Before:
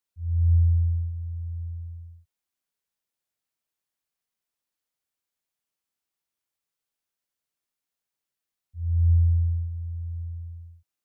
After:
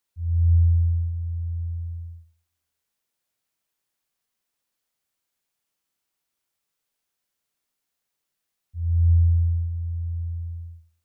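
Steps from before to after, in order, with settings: in parallel at -1 dB: compression, threshold -36 dBFS, peak gain reduction 17.5 dB; on the sum: Schroeder reverb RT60 0.7 s, combs from 33 ms, DRR 9.5 dB

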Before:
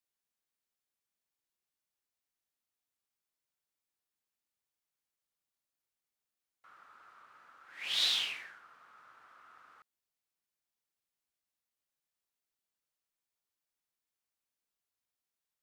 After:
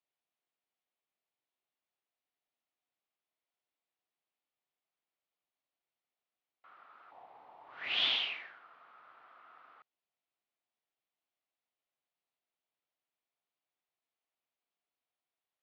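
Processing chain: 7.11–8.16 s: frequency shift -440 Hz; cabinet simulation 160–3700 Hz, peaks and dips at 200 Hz -4 dB, 700 Hz +6 dB, 1.6 kHz -4 dB; trim +1 dB

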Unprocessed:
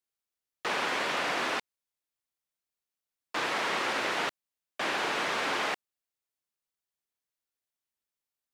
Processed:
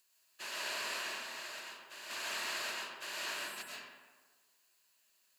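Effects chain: spectral levelling over time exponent 0.6; pre-emphasis filter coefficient 0.9; spectral selection erased 5.30–5.67 s, 280–7500 Hz; rippled EQ curve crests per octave 1.4, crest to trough 7 dB; plain phase-vocoder stretch 0.63×; reverse echo 1107 ms -6.5 dB; reverberation RT60 1.4 s, pre-delay 80 ms, DRR -3.5 dB; trim -2 dB

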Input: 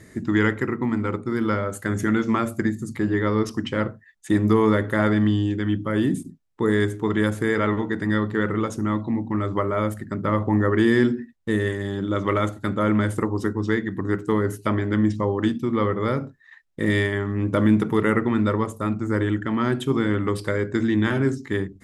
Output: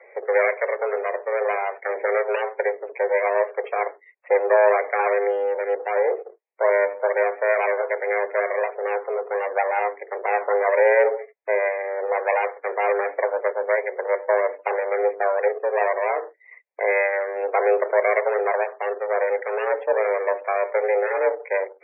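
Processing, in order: comb filter that takes the minimum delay 0.43 ms; mistuned SSB +190 Hz 280–2200 Hz; loudest bins only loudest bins 64; trim +4.5 dB

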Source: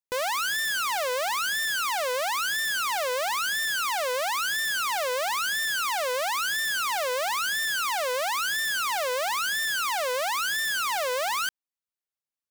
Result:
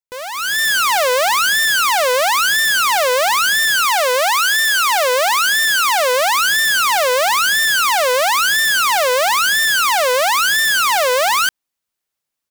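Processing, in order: level rider gain up to 15 dB; 3.85–6.15 s: high-pass 380 Hz -> 130 Hz 12 dB/octave; trim -2.5 dB

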